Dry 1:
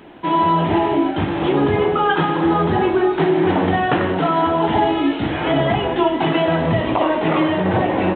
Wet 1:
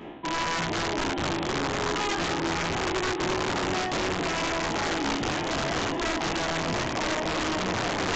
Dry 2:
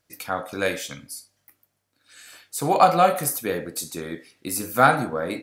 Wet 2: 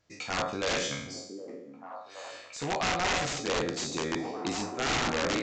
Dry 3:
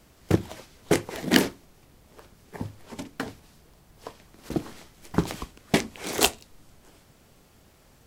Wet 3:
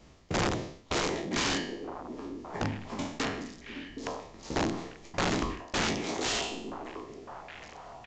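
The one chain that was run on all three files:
peak hold with a decay on every bin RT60 0.68 s
high-shelf EQ 2,600 Hz −2.5 dB
notch filter 1,500 Hz, Q 9.6
reversed playback
downward compressor 16 to 1, threshold −24 dBFS
reversed playback
wrap-around overflow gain 22 dB
downsampling to 16,000 Hz
on a send: echo through a band-pass that steps 767 ms, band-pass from 320 Hz, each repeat 1.4 octaves, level −5 dB

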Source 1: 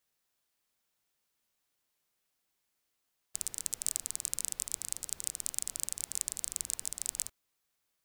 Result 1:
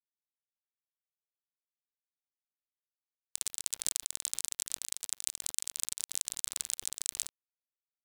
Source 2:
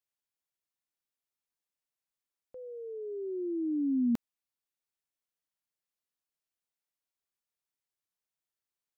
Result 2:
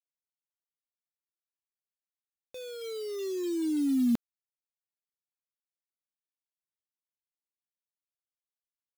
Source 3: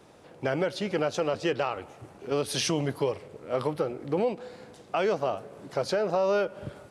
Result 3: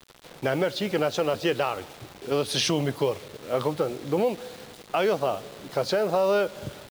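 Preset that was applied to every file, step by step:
high-shelf EQ 6,800 Hz −4 dB
bit reduction 8 bits
parametric band 3,700 Hz +5 dB 0.64 octaves
level +2.5 dB

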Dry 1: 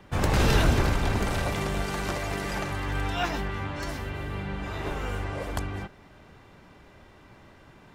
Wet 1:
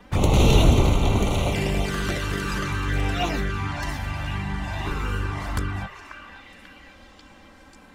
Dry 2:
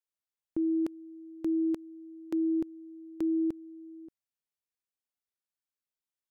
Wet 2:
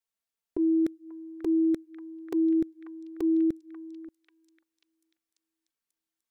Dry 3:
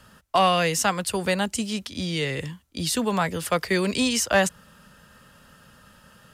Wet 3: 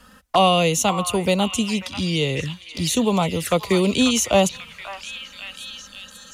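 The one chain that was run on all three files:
flanger swept by the level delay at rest 4.4 ms, full sweep at −23.5 dBFS
echo through a band-pass that steps 540 ms, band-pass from 1,400 Hz, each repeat 0.7 octaves, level −5 dB
level +6 dB

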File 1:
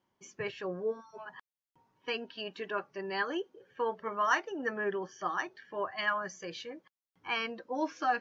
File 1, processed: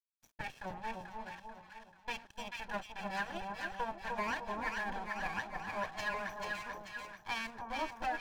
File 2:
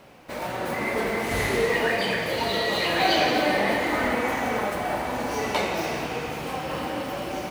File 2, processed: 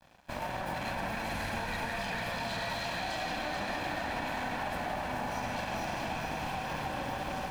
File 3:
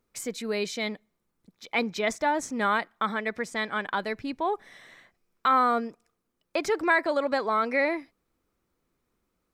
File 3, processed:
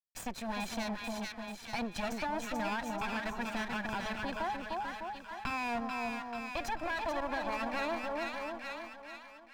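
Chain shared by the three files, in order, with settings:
lower of the sound and its delayed copy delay 1.2 ms
brickwall limiter −22 dBFS
downward expander −57 dBFS
dead-zone distortion −51.5 dBFS
high-shelf EQ 4,500 Hz −6 dB
echo with a time of its own for lows and highs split 1,100 Hz, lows 301 ms, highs 438 ms, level −4 dB
downward compressor 2.5 to 1, threshold −34 dBFS

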